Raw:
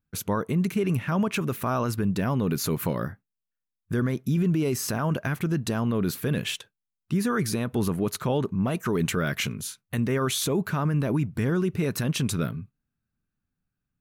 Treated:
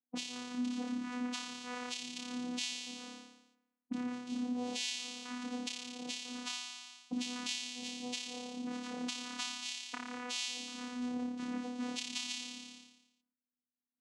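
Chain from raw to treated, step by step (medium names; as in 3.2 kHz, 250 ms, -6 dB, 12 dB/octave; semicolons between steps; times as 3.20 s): expander on every frequency bin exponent 1.5; in parallel at -2.5 dB: gain riding; on the sum: auto-wah 310–4900 Hz, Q 7, up, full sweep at -28.5 dBFS; tone controls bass +13 dB, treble +10 dB; on a send: flutter echo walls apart 4.9 m, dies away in 0.9 s; on the sum: compression 2.5:1, threshold -50 dBFS, peak gain reduction 17 dB; vocoder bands 4, saw 247 Hz; trim +10 dB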